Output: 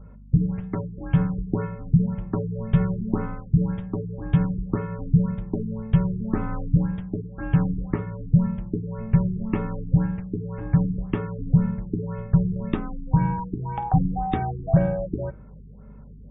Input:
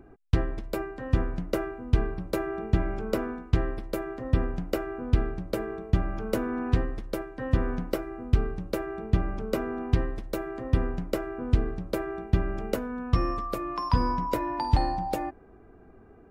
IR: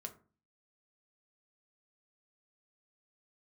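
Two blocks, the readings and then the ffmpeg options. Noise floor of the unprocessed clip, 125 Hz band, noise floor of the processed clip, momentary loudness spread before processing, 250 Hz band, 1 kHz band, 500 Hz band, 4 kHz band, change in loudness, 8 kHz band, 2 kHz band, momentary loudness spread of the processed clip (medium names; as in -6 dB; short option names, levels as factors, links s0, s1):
-52 dBFS, +7.0 dB, -44 dBFS, 6 LU, +7.5 dB, -0.5 dB, -2.0 dB, no reading, +4.5 dB, under -30 dB, -3.5 dB, 8 LU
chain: -filter_complex "[0:a]afreqshift=-220,aeval=exprs='val(0)+0.00447*(sin(2*PI*50*n/s)+sin(2*PI*2*50*n/s)/2+sin(2*PI*3*50*n/s)/3+sin(2*PI*4*50*n/s)/4+sin(2*PI*5*50*n/s)/5)':c=same,asplit=2[s0][s1];[1:a]atrim=start_sample=2205,afade=t=out:st=0.45:d=0.01,atrim=end_sample=20286[s2];[s1][s2]afir=irnorm=-1:irlink=0,volume=0.841[s3];[s0][s3]amix=inputs=2:normalize=0,afftfilt=real='re*lt(b*sr/1024,410*pow(3800/410,0.5+0.5*sin(2*PI*1.9*pts/sr)))':imag='im*lt(b*sr/1024,410*pow(3800/410,0.5+0.5*sin(2*PI*1.9*pts/sr)))':win_size=1024:overlap=0.75"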